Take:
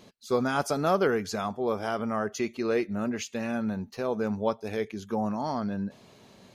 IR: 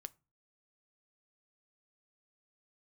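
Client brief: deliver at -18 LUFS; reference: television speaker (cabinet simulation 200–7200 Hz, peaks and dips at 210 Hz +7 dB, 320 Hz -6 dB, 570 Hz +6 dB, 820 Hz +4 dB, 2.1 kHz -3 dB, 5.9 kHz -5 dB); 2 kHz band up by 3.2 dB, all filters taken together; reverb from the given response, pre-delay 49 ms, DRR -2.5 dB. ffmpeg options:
-filter_complex "[0:a]equalizer=f=2000:t=o:g=5.5,asplit=2[s0][s1];[1:a]atrim=start_sample=2205,adelay=49[s2];[s1][s2]afir=irnorm=-1:irlink=0,volume=2.51[s3];[s0][s3]amix=inputs=2:normalize=0,highpass=f=200:w=0.5412,highpass=f=200:w=1.3066,equalizer=f=210:t=q:w=4:g=7,equalizer=f=320:t=q:w=4:g=-6,equalizer=f=570:t=q:w=4:g=6,equalizer=f=820:t=q:w=4:g=4,equalizer=f=2100:t=q:w=4:g=-3,equalizer=f=5900:t=q:w=4:g=-5,lowpass=f=7200:w=0.5412,lowpass=f=7200:w=1.3066,volume=1.68"

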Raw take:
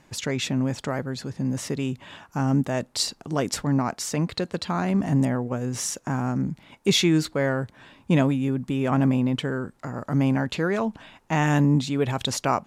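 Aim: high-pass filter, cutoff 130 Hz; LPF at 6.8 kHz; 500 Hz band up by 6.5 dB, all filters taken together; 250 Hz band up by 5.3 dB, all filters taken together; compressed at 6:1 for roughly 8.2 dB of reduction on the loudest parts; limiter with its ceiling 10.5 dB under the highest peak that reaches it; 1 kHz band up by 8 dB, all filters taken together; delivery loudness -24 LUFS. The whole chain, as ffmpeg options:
-af "highpass=130,lowpass=6800,equalizer=f=250:t=o:g=5,equalizer=f=500:t=o:g=4.5,equalizer=f=1000:t=o:g=8.5,acompressor=threshold=0.1:ratio=6,volume=1.58,alimiter=limit=0.224:level=0:latency=1"

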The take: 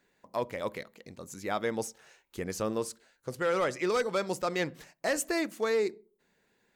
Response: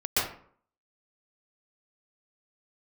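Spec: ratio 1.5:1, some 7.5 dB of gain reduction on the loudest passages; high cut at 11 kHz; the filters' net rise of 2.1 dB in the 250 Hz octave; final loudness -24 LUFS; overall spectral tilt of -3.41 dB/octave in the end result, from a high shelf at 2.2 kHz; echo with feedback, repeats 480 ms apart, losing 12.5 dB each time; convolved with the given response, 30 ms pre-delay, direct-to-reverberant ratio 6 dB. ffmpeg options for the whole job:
-filter_complex "[0:a]lowpass=11000,equalizer=f=250:t=o:g=3,highshelf=f=2200:g=5.5,acompressor=threshold=0.00562:ratio=1.5,aecho=1:1:480|960|1440:0.237|0.0569|0.0137,asplit=2[s0][s1];[1:a]atrim=start_sample=2205,adelay=30[s2];[s1][s2]afir=irnorm=-1:irlink=0,volume=0.133[s3];[s0][s3]amix=inputs=2:normalize=0,volume=4.47"

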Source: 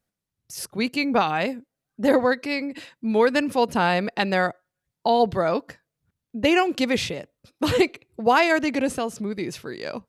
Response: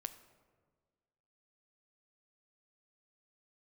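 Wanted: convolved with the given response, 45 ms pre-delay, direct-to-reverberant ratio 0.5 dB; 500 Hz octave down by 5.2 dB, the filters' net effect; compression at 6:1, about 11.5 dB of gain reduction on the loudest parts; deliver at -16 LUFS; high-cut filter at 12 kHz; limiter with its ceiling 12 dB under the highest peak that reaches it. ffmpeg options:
-filter_complex "[0:a]lowpass=12000,equalizer=f=500:t=o:g=-6.5,acompressor=threshold=0.0355:ratio=6,alimiter=level_in=1.58:limit=0.0631:level=0:latency=1,volume=0.631,asplit=2[s0][s1];[1:a]atrim=start_sample=2205,adelay=45[s2];[s1][s2]afir=irnorm=-1:irlink=0,volume=1.33[s3];[s0][s3]amix=inputs=2:normalize=0,volume=8.91"

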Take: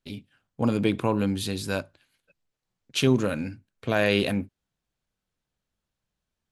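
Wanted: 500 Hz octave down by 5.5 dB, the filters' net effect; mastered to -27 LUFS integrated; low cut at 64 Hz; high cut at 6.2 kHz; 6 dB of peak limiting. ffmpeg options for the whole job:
-af "highpass=64,lowpass=6200,equalizer=f=500:t=o:g=-7,volume=1.33,alimiter=limit=0.237:level=0:latency=1"

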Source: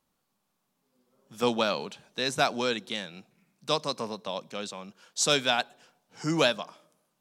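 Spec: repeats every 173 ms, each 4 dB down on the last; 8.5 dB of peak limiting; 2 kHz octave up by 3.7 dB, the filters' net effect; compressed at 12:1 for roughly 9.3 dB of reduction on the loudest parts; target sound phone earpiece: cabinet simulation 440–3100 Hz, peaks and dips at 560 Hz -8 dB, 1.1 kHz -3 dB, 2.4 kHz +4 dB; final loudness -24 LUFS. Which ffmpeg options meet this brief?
-af "equalizer=f=2000:t=o:g=3.5,acompressor=threshold=0.0447:ratio=12,alimiter=limit=0.0794:level=0:latency=1,highpass=440,equalizer=f=560:t=q:w=4:g=-8,equalizer=f=1100:t=q:w=4:g=-3,equalizer=f=2400:t=q:w=4:g=4,lowpass=f=3100:w=0.5412,lowpass=f=3100:w=1.3066,aecho=1:1:173|346|519|692|865|1038|1211|1384|1557:0.631|0.398|0.25|0.158|0.0994|0.0626|0.0394|0.0249|0.0157,volume=5.31"

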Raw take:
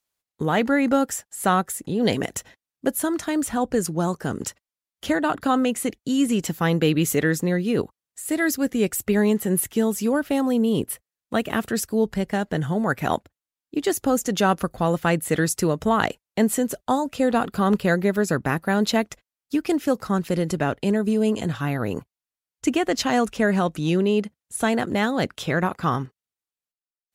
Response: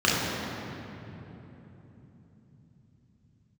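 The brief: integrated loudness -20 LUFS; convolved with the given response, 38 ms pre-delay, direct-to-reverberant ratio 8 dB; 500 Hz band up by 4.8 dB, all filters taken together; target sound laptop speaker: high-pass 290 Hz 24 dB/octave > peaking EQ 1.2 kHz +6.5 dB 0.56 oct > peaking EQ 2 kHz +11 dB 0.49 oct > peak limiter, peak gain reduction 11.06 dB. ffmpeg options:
-filter_complex "[0:a]equalizer=f=500:t=o:g=5.5,asplit=2[s0][s1];[1:a]atrim=start_sample=2205,adelay=38[s2];[s1][s2]afir=irnorm=-1:irlink=0,volume=0.0473[s3];[s0][s3]amix=inputs=2:normalize=0,highpass=f=290:w=0.5412,highpass=f=290:w=1.3066,equalizer=f=1200:t=o:w=0.56:g=6.5,equalizer=f=2000:t=o:w=0.49:g=11,volume=1.26,alimiter=limit=0.398:level=0:latency=1"

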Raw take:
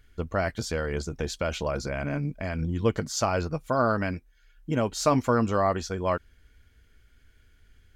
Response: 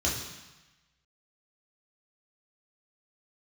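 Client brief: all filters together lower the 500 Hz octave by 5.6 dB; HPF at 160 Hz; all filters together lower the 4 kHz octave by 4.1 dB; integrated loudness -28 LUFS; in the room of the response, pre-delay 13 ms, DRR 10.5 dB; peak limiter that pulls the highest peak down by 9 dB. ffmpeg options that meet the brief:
-filter_complex "[0:a]highpass=160,equalizer=f=500:t=o:g=-7,equalizer=f=4000:t=o:g=-5.5,alimiter=limit=0.0944:level=0:latency=1,asplit=2[s0][s1];[1:a]atrim=start_sample=2205,adelay=13[s2];[s1][s2]afir=irnorm=-1:irlink=0,volume=0.106[s3];[s0][s3]amix=inputs=2:normalize=0,volume=1.88"

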